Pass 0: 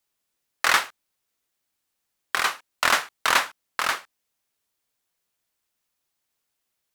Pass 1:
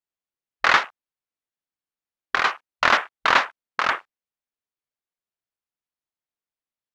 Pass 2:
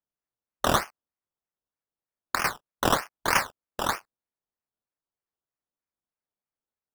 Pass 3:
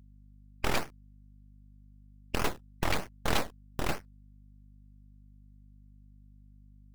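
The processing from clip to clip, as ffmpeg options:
-af "lowpass=f=2.6k:p=1,afwtdn=0.0126,volume=4.5dB"
-af "acrusher=samples=16:mix=1:aa=0.000001:lfo=1:lforange=9.6:lforate=3.2,volume=-5.5dB"
-af "afftfilt=real='re*lt(hypot(re,im),0.251)':imag='im*lt(hypot(re,im),0.251)':win_size=1024:overlap=0.75,aeval=exprs='abs(val(0))':c=same,aeval=exprs='val(0)+0.002*(sin(2*PI*50*n/s)+sin(2*PI*2*50*n/s)/2+sin(2*PI*3*50*n/s)/3+sin(2*PI*4*50*n/s)/4+sin(2*PI*5*50*n/s)/5)':c=same"

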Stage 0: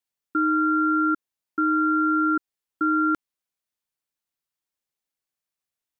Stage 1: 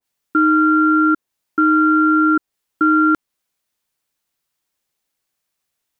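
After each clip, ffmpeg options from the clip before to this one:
-af "alimiter=limit=-18dB:level=0:latency=1:release=66,acontrast=72,adynamicequalizer=threshold=0.0282:dfrequency=1500:dqfactor=0.7:tfrequency=1500:tqfactor=0.7:attack=5:release=100:ratio=0.375:range=2:mode=cutabove:tftype=highshelf,volume=4.5dB"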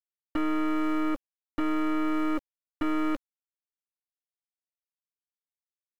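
-filter_complex "[0:a]asplit=3[a][b][c];[a]bandpass=f=270:t=q:w=8,volume=0dB[d];[b]bandpass=f=2.29k:t=q:w=8,volume=-6dB[e];[c]bandpass=f=3.01k:t=q:w=8,volume=-9dB[f];[d][e][f]amix=inputs=3:normalize=0,aeval=exprs='val(0)*gte(abs(val(0)),0.0133)':c=same,aeval=exprs='0.126*(cos(1*acos(clip(val(0)/0.126,-1,1)))-cos(1*PI/2))+0.02*(cos(3*acos(clip(val(0)/0.126,-1,1)))-cos(3*PI/2))+0.0282*(cos(6*acos(clip(val(0)/0.126,-1,1)))-cos(6*PI/2))+0.00141*(cos(7*acos(clip(val(0)/0.126,-1,1)))-cos(7*PI/2))':c=same,volume=-2dB"

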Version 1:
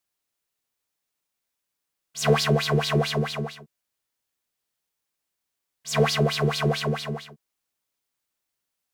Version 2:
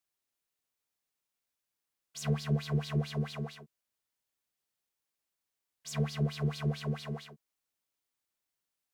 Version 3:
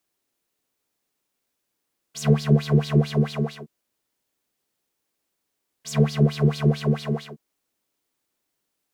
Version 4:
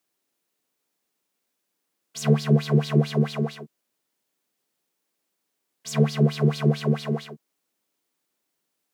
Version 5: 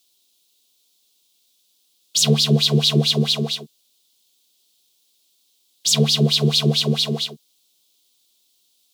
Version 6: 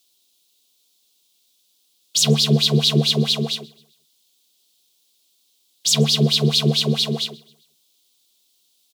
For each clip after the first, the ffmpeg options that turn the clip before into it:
-filter_complex "[0:a]acrossover=split=250[a][b];[b]acompressor=threshold=-36dB:ratio=5[c];[a][c]amix=inputs=2:normalize=0,volume=-5.5dB"
-af "equalizer=f=310:t=o:w=1.9:g=8.5,volume=8dB"
-af "highpass=f=130:w=0.5412,highpass=f=130:w=1.3066"
-af "highshelf=f=2.5k:t=q:w=3:g=12.5,volume=2dB"
-af "aecho=1:1:131|262|393:0.0631|0.0297|0.0139"

